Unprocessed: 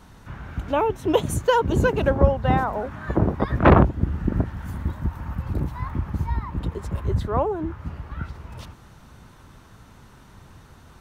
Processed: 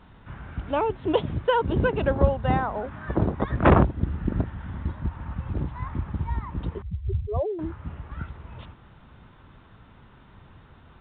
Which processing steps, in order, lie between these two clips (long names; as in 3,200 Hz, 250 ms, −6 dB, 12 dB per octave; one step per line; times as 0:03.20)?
0:06.82–0:07.59: expanding power law on the bin magnitudes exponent 3.7
level −3 dB
A-law companding 64 kbit/s 8,000 Hz